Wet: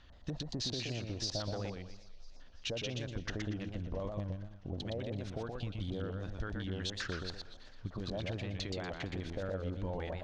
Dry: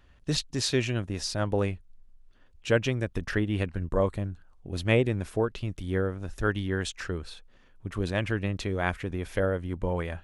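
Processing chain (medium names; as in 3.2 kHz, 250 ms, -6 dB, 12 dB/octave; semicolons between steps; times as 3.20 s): LFO low-pass square 5 Hz 700–4100 Hz; peak limiter -20.5 dBFS, peak gain reduction 11 dB; compression 6:1, threshold -36 dBFS, peak gain reduction 11.5 dB; graphic EQ with 31 bands 400 Hz -5 dB, 2.5 kHz -3 dB, 6.3 kHz +8 dB; thinning echo 334 ms, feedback 62%, high-pass 800 Hz, level -20 dB; modulated delay 121 ms, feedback 32%, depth 156 cents, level -4 dB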